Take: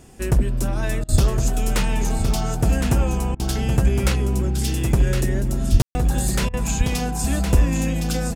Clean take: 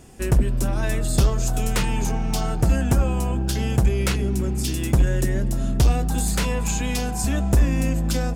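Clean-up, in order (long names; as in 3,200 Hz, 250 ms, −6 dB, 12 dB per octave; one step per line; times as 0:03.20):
high-pass at the plosives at 0:01.11/0:05.71/0:06.47
ambience match 0:05.82–0:05.95
repair the gap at 0:01.04/0:03.35/0:06.49, 44 ms
echo removal 1,063 ms −6.5 dB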